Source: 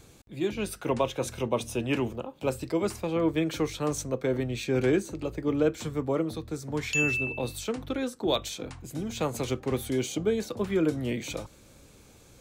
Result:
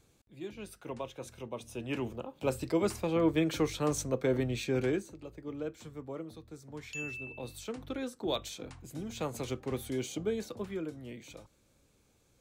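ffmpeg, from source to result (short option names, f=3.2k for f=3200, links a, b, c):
-af "volume=5.5dB,afade=t=in:st=1.62:d=1.04:silence=0.266073,afade=t=out:st=4.5:d=0.67:silence=0.251189,afade=t=in:st=7.16:d=0.78:silence=0.446684,afade=t=out:st=10.45:d=0.44:silence=0.398107"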